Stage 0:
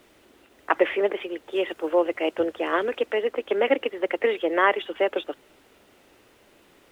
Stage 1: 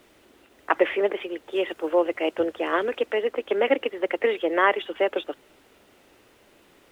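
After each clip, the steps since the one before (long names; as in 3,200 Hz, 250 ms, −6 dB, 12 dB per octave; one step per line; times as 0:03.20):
no processing that can be heard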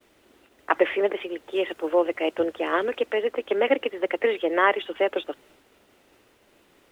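downward expander −53 dBFS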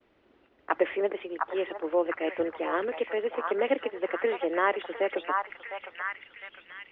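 high-frequency loss of the air 290 metres
echo through a band-pass that steps 707 ms, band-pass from 1,100 Hz, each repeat 0.7 octaves, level −0.5 dB
level −4 dB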